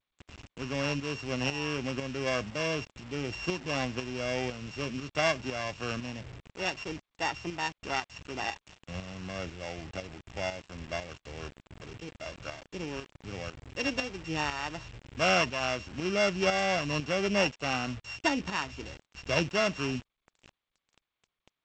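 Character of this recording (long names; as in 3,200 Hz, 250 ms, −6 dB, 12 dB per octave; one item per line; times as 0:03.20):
a buzz of ramps at a fixed pitch in blocks of 16 samples
tremolo saw up 2 Hz, depth 60%
a quantiser's noise floor 8 bits, dither none
G.722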